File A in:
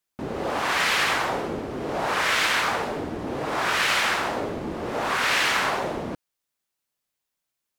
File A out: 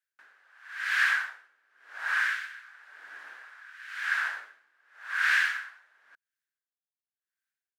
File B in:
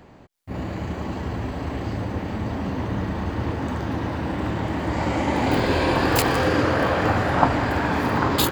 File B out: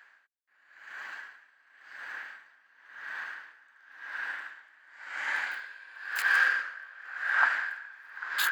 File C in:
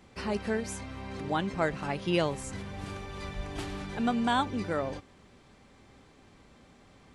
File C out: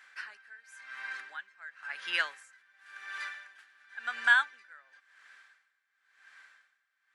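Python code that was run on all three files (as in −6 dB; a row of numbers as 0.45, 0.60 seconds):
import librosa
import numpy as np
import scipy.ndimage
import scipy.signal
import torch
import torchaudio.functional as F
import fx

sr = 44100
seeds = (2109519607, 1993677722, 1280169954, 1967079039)

y = fx.highpass_res(x, sr, hz=1600.0, q=8.1)
y = y * 10.0 ** (-25 * (0.5 - 0.5 * np.cos(2.0 * np.pi * 0.94 * np.arange(len(y)) / sr)) / 20.0)
y = librosa.util.normalize(y) * 10.0 ** (-12 / 20.0)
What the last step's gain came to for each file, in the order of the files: −11.0, −8.0, −0.5 decibels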